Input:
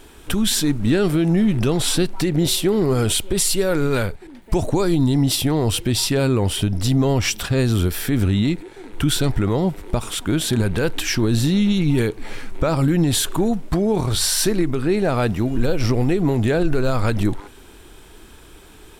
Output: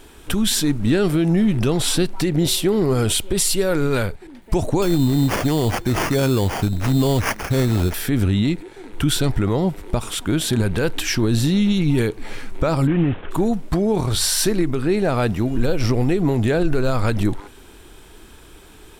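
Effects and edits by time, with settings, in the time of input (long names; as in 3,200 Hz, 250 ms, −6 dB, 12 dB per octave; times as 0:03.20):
0:04.82–0:07.94: sample-rate reduction 3,900 Hz
0:12.87–0:13.31: variable-slope delta modulation 16 kbit/s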